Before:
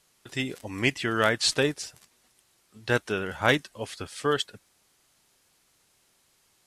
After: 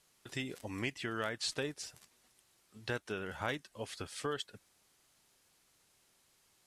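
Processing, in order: compression 2.5:1, threshold -33 dBFS, peak gain reduction 12 dB; trim -4.5 dB

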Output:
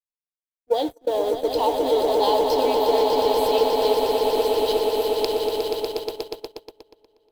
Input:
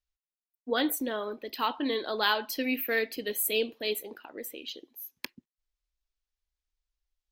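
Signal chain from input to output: recorder AGC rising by 8.4 dB/s; FFT filter 130 Hz 0 dB, 230 Hz -14 dB, 350 Hz +6 dB, 920 Hz +8 dB, 1.4 kHz -27 dB, 3.1 kHz -4 dB, 4.9 kHz 0 dB, 11 kHz -18 dB; in parallel at -12 dB: Schmitt trigger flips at -34.5 dBFS; on the sum: treble shelf 7.8 kHz +7 dB; on a send: echo with a slow build-up 120 ms, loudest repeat 8, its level -7 dB; on the sum: gate -25 dBFS, range -29 dB; tape noise reduction on one side only decoder only

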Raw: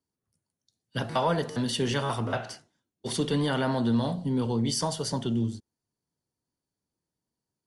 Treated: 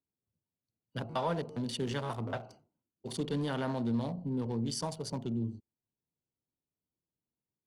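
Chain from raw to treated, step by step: local Wiener filter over 25 samples; trim -6.5 dB

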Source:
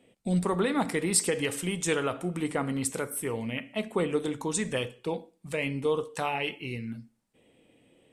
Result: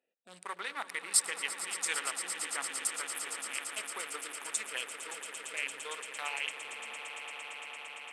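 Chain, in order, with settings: local Wiener filter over 41 samples; Chebyshev high-pass 1.5 kHz, order 2; echo with a slow build-up 114 ms, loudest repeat 8, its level -13 dB

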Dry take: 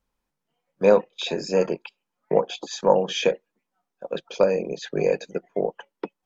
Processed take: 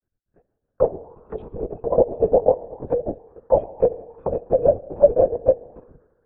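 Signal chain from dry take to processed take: local Wiener filter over 41 samples; in parallel at 0 dB: level held to a coarse grid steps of 21 dB; on the sum: chorus voices 4, 0.4 Hz, delay 14 ms, depth 3.8 ms; granulator, grains 20 per s, spray 698 ms; reverberation RT60 1.6 s, pre-delay 4 ms, DRR 16.5 dB; LPC vocoder at 8 kHz whisper; loudness maximiser +10.5 dB; touch-sensitive low-pass 660–1600 Hz down, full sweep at -17 dBFS; trim -10 dB

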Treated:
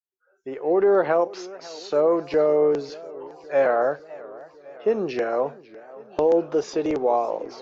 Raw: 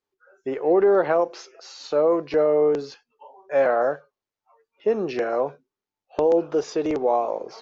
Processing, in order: fade-in on the opening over 0.94 s; modulated delay 551 ms, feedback 65%, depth 182 cents, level -20 dB

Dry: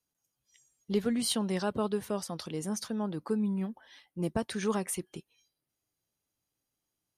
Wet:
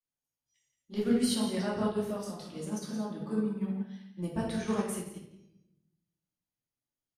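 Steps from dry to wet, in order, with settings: delay 172 ms -11 dB; simulated room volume 350 m³, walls mixed, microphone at 2.5 m; upward expansion 1.5:1, over -39 dBFS; trim -6 dB

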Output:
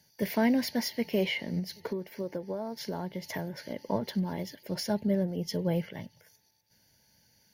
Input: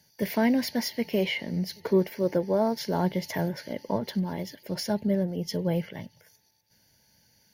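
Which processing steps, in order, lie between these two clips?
1.59–3.87 s: compression 12:1, threshold -29 dBFS, peak gain reduction 13 dB; trim -2 dB

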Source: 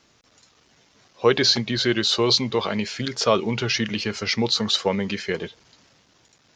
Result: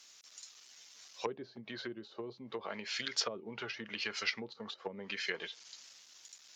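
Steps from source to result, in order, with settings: low-pass that closes with the level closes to 310 Hz, closed at -17 dBFS; differentiator; trim +8 dB

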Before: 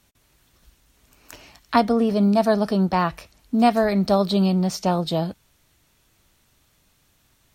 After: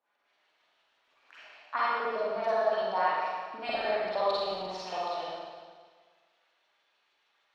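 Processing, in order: three-band isolator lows -18 dB, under 290 Hz, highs -13 dB, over 5.1 kHz; LFO band-pass saw up 6.5 Hz 570–4300 Hz; reverberation RT60 1.6 s, pre-delay 38 ms, DRR -9 dB; trim -7.5 dB

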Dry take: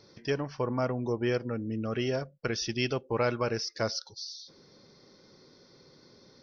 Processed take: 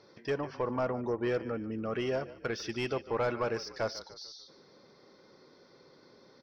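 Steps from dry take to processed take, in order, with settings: frequency-shifting echo 147 ms, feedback 45%, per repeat -35 Hz, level -18 dB; overdrive pedal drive 15 dB, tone 1.2 kHz, clips at -15 dBFS; trim -4 dB

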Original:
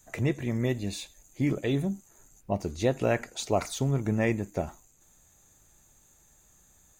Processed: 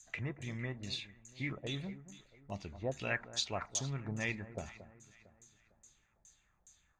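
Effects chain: amplifier tone stack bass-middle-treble 5-5-5; LFO low-pass saw down 2.4 Hz 570–7300 Hz; echo whose repeats swap between lows and highs 227 ms, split 1.4 kHz, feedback 59%, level -13 dB; trim +3.5 dB

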